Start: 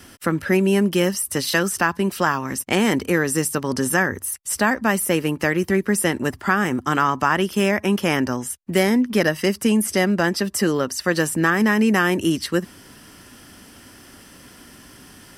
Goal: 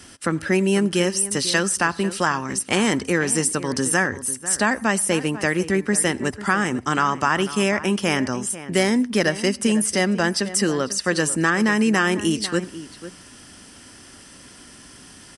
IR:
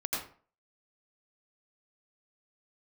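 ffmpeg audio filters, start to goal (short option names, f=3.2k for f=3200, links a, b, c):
-filter_complex "[0:a]highshelf=f=4.2k:g=7.5,asplit=2[a][b];[b]adelay=495.6,volume=-14dB,highshelf=f=4k:g=-11.2[c];[a][c]amix=inputs=2:normalize=0,asplit=2[d][e];[1:a]atrim=start_sample=2205,afade=t=out:st=0.22:d=0.01,atrim=end_sample=10143[f];[e][f]afir=irnorm=-1:irlink=0,volume=-28dB[g];[d][g]amix=inputs=2:normalize=0,aresample=22050,aresample=44100,volume=-2dB"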